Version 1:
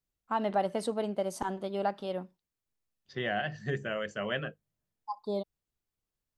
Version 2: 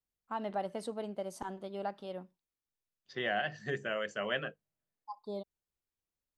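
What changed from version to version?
first voice −7.0 dB
second voice: add high-pass filter 320 Hz 6 dB per octave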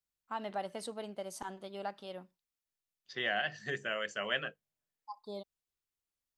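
master: add tilt shelving filter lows −4.5 dB, about 1,200 Hz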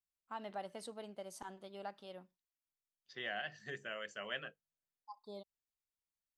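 first voice −6.0 dB
second voice −8.0 dB

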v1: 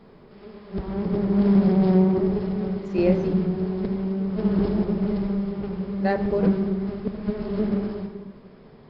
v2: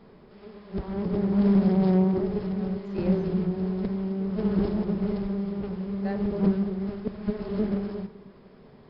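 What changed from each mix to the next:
speech −12.0 dB
background: send −11.0 dB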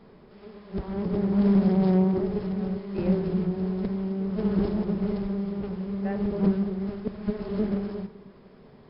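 speech: add linear-phase brick-wall low-pass 3,100 Hz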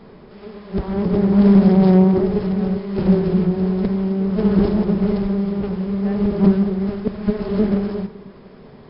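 background +9.0 dB

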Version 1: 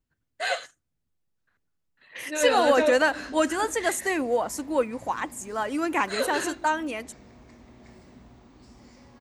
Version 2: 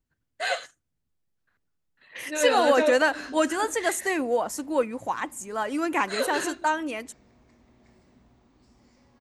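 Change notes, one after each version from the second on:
background −8.5 dB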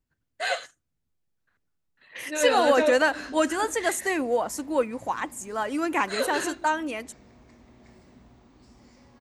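background +5.5 dB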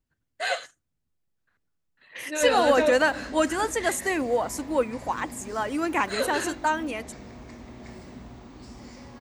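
background +10.5 dB

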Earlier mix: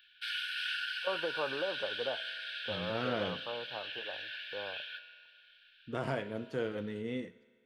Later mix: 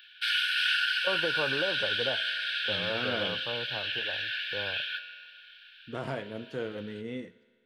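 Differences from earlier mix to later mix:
first voice: remove high-pass filter 550 Hz 6 dB per octave
background +9.5 dB

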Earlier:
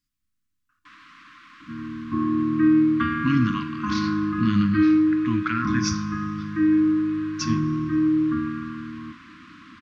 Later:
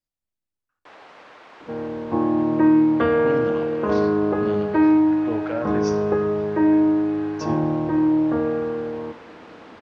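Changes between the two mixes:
speech −10.0 dB
master: remove linear-phase brick-wall band-stop 330–1,000 Hz

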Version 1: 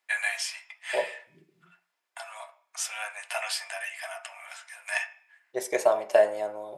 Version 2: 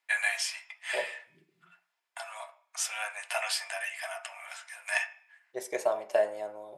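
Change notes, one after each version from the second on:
second voice −6.0 dB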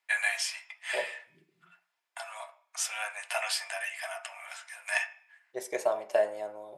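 nothing changed

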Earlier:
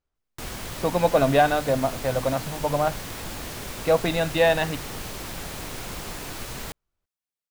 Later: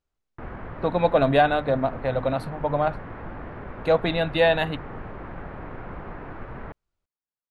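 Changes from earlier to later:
background: add low-pass filter 1,700 Hz 24 dB per octave
master: add high-shelf EQ 8,300 Hz +5 dB

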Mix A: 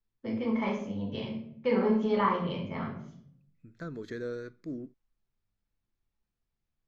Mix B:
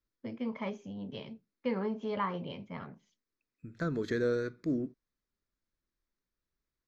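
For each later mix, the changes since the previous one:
second voice +6.5 dB
reverb: off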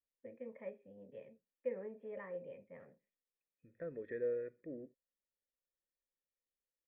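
master: add formant resonators in series e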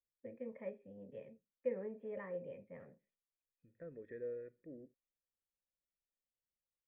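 second voice −8.0 dB
master: add low-shelf EQ 270 Hz +6.5 dB

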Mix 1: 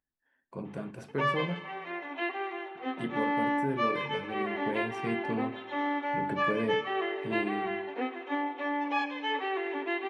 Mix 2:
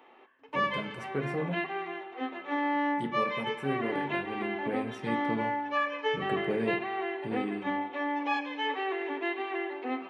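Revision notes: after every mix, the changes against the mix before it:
background: entry −0.65 s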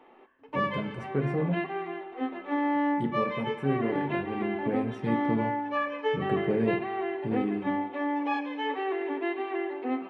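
master: add spectral tilt −2.5 dB per octave

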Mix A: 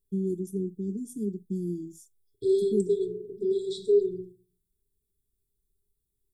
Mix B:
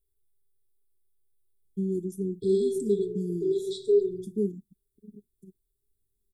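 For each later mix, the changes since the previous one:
first voice: entry +1.65 s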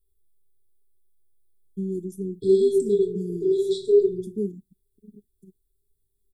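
second voice: send +9.5 dB

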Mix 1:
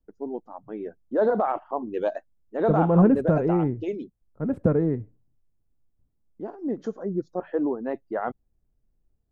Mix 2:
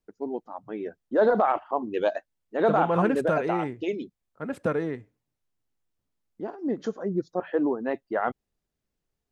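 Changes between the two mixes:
second voice: add spectral tilt +4 dB per octave
master: add parametric band 3,400 Hz +9 dB 2.6 octaves

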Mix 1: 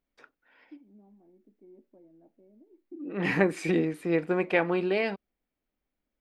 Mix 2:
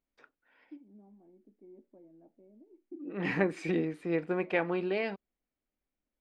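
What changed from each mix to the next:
second voice −4.5 dB
master: add high-frequency loss of the air 57 metres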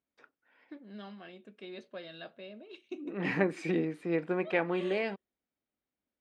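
first voice: remove formant resonators in series u
master: add high-pass filter 88 Hz 12 dB per octave

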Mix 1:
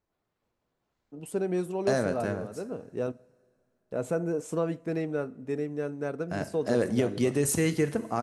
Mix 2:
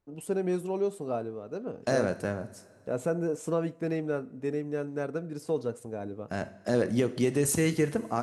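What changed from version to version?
first voice: entry −1.05 s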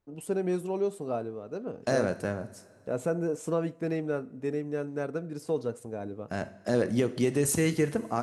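nothing changed

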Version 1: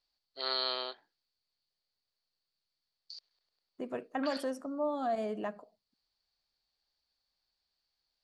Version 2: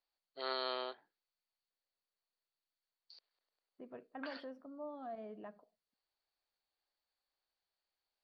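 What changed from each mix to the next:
second voice −12.0 dB
master: add high-frequency loss of the air 310 metres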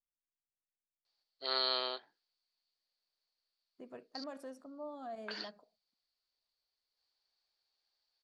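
first voice: entry +1.05 s
master: remove high-frequency loss of the air 310 metres

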